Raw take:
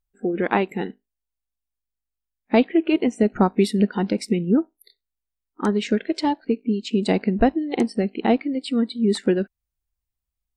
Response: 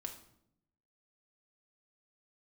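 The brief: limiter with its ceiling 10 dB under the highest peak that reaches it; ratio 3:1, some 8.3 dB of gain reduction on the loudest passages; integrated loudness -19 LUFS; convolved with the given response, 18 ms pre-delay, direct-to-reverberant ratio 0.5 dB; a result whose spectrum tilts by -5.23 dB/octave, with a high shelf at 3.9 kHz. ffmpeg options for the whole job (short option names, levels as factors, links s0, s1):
-filter_complex "[0:a]highshelf=f=3900:g=7.5,acompressor=threshold=0.0631:ratio=3,alimiter=limit=0.0944:level=0:latency=1,asplit=2[s0][s1];[1:a]atrim=start_sample=2205,adelay=18[s2];[s1][s2]afir=irnorm=-1:irlink=0,volume=1.26[s3];[s0][s3]amix=inputs=2:normalize=0,volume=2.82"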